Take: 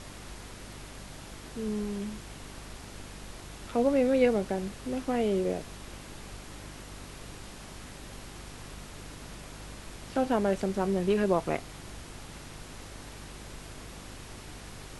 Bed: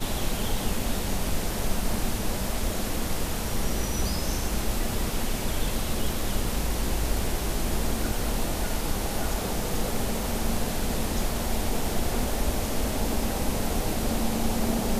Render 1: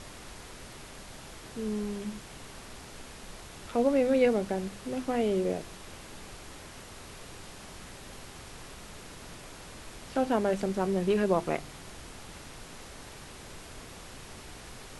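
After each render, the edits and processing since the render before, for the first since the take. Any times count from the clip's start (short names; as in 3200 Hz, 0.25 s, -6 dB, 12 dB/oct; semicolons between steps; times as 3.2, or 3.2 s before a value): de-hum 50 Hz, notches 7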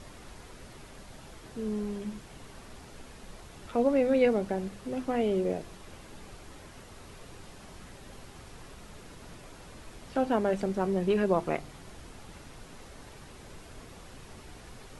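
denoiser 6 dB, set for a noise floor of -47 dBFS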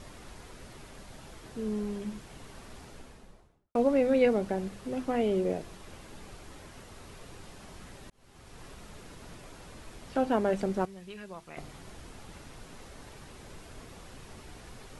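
2.81–3.75 studio fade out; 8.1–8.65 fade in linear; 10.85–11.57 passive tone stack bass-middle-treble 5-5-5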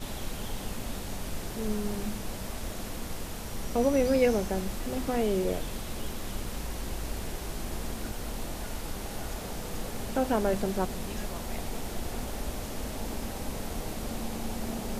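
add bed -8.5 dB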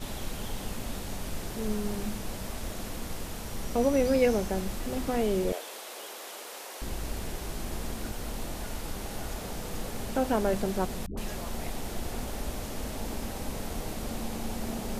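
5.52–6.82 HPF 430 Hz 24 dB/oct; 11.06–11.78 dispersion highs, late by 0.113 s, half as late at 460 Hz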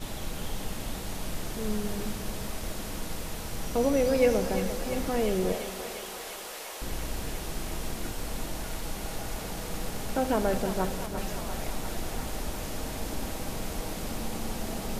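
thinning echo 0.347 s, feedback 85%, high-pass 550 Hz, level -8 dB; shoebox room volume 2500 m³, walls mixed, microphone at 0.59 m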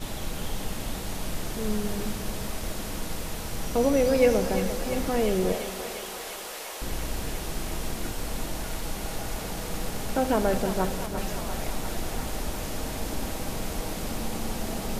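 gain +2.5 dB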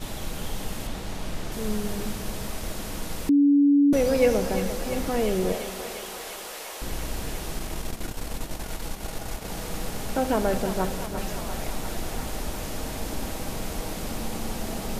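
0.87–1.52 high shelf 8400 Hz -10 dB; 3.29–3.93 bleep 285 Hz -14.5 dBFS; 7.59–9.5 transient shaper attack 0 dB, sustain -11 dB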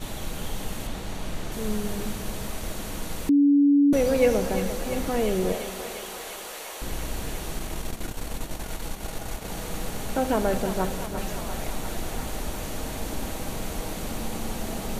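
notch 5100 Hz, Q 12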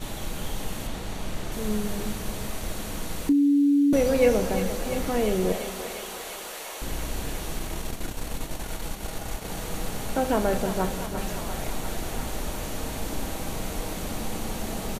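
doubler 33 ms -12.5 dB; thin delay 0.837 s, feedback 85%, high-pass 2200 Hz, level -17.5 dB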